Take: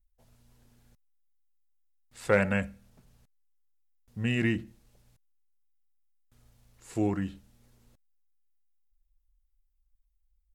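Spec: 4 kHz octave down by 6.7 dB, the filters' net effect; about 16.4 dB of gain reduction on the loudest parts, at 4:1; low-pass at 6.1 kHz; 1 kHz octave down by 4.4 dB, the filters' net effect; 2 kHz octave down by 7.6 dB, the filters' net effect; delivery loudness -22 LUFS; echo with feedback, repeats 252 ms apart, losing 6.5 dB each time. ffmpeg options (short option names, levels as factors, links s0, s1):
-af "lowpass=6100,equalizer=f=1000:t=o:g=-3.5,equalizer=f=2000:t=o:g=-7.5,equalizer=f=4000:t=o:g=-5,acompressor=threshold=0.01:ratio=4,aecho=1:1:252|504|756|1008|1260|1512:0.473|0.222|0.105|0.0491|0.0231|0.0109,volume=14.1"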